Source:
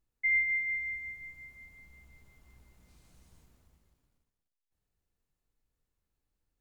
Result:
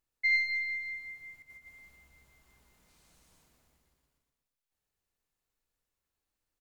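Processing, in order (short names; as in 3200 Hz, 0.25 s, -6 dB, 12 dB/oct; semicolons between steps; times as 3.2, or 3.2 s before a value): tracing distortion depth 0.023 ms; low shelf 330 Hz -12 dB; 1.42–1.96 negative-ratio compressor -54 dBFS, ratio -0.5; feedback echo 0.12 s, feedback 45%, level -7.5 dB; gain +1.5 dB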